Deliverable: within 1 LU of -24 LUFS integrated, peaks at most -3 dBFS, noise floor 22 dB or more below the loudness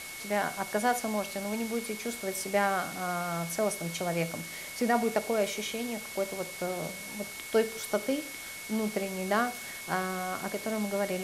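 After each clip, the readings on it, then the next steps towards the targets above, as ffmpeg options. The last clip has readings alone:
steady tone 2.2 kHz; tone level -43 dBFS; noise floor -42 dBFS; noise floor target -54 dBFS; loudness -31.5 LUFS; peak level -13.5 dBFS; loudness target -24.0 LUFS
-> -af "bandreject=f=2200:w=30"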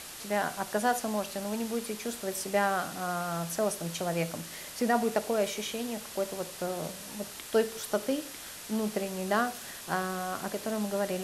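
steady tone not found; noise floor -44 dBFS; noise floor target -54 dBFS
-> -af "afftdn=nr=10:nf=-44"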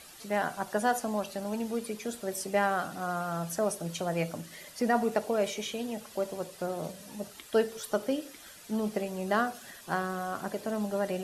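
noise floor -51 dBFS; noise floor target -55 dBFS
-> -af "afftdn=nr=6:nf=-51"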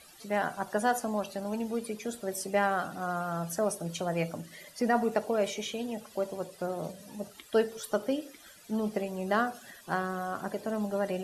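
noise floor -55 dBFS; loudness -32.5 LUFS; peak level -14.0 dBFS; loudness target -24.0 LUFS
-> -af "volume=2.66"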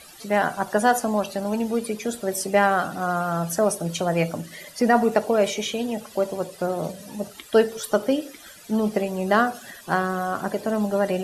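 loudness -24.0 LUFS; peak level -5.5 dBFS; noise floor -46 dBFS

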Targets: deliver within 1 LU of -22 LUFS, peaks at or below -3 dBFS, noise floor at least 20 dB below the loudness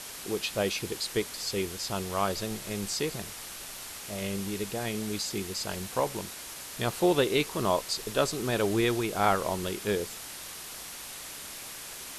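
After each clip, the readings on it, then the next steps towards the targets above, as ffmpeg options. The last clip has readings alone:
noise floor -42 dBFS; noise floor target -51 dBFS; loudness -31.0 LUFS; peak level -9.0 dBFS; loudness target -22.0 LUFS
-> -af "afftdn=nr=9:nf=-42"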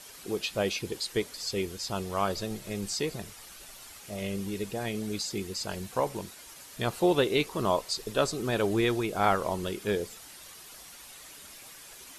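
noise floor -49 dBFS; noise floor target -51 dBFS
-> -af "afftdn=nr=6:nf=-49"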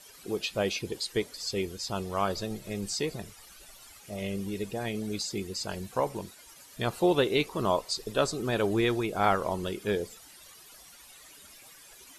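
noise floor -53 dBFS; loudness -30.5 LUFS; peak level -9.5 dBFS; loudness target -22.0 LUFS
-> -af "volume=2.66,alimiter=limit=0.708:level=0:latency=1"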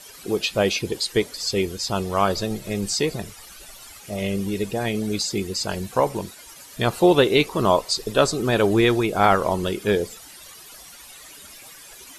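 loudness -22.0 LUFS; peak level -3.0 dBFS; noise floor -44 dBFS

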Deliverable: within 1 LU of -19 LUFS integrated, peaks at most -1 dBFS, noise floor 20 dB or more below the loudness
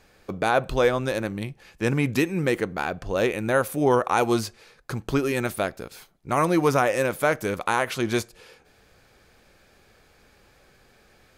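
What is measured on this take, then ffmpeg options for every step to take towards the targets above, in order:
loudness -24.5 LUFS; peak level -7.5 dBFS; loudness target -19.0 LUFS
-> -af "volume=1.88"

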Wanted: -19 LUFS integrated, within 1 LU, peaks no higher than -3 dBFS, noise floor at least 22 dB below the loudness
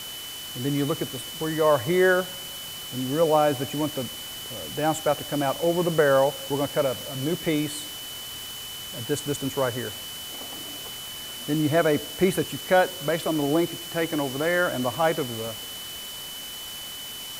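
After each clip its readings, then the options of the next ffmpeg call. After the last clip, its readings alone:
steady tone 3 kHz; tone level -37 dBFS; noise floor -37 dBFS; noise floor target -48 dBFS; loudness -26.0 LUFS; peak level -7.5 dBFS; loudness target -19.0 LUFS
-> -af "bandreject=f=3000:w=30"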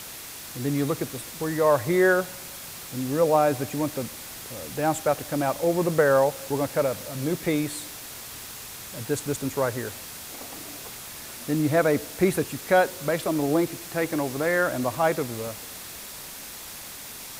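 steady tone not found; noise floor -40 dBFS; noise floor target -48 dBFS
-> -af "afftdn=nr=8:nf=-40"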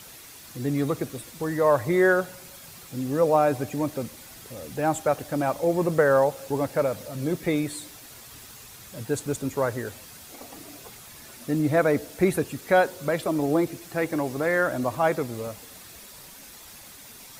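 noise floor -46 dBFS; noise floor target -47 dBFS
-> -af "afftdn=nr=6:nf=-46"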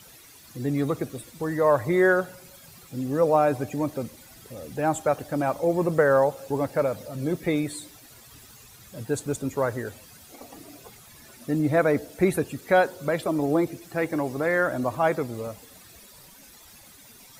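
noise floor -50 dBFS; loudness -25.0 LUFS; peak level -7.5 dBFS; loudness target -19.0 LUFS
-> -af "volume=2,alimiter=limit=0.708:level=0:latency=1"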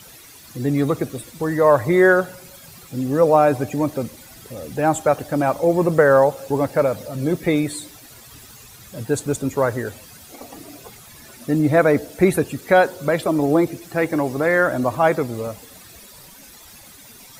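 loudness -19.0 LUFS; peak level -3.0 dBFS; noise floor -44 dBFS

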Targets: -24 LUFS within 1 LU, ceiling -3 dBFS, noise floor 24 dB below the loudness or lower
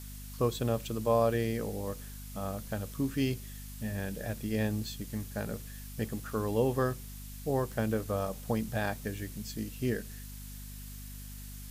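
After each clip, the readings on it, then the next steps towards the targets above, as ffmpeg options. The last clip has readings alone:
hum 50 Hz; highest harmonic 250 Hz; hum level -43 dBFS; noise floor -44 dBFS; noise floor target -58 dBFS; loudness -34.0 LUFS; peak level -16.0 dBFS; loudness target -24.0 LUFS
-> -af "bandreject=f=50:t=h:w=4,bandreject=f=100:t=h:w=4,bandreject=f=150:t=h:w=4,bandreject=f=200:t=h:w=4,bandreject=f=250:t=h:w=4"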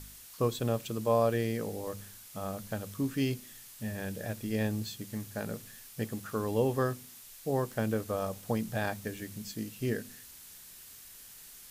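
hum not found; noise floor -51 dBFS; noise floor target -58 dBFS
-> -af "afftdn=nr=7:nf=-51"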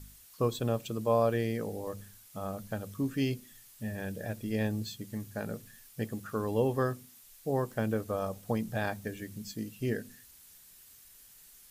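noise floor -56 dBFS; noise floor target -58 dBFS
-> -af "afftdn=nr=6:nf=-56"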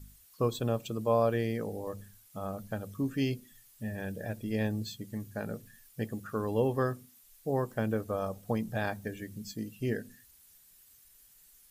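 noise floor -60 dBFS; loudness -34.0 LUFS; peak level -16.0 dBFS; loudness target -24.0 LUFS
-> -af "volume=3.16"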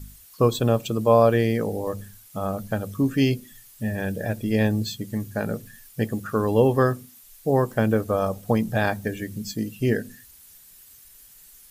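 loudness -24.0 LUFS; peak level -6.0 dBFS; noise floor -50 dBFS

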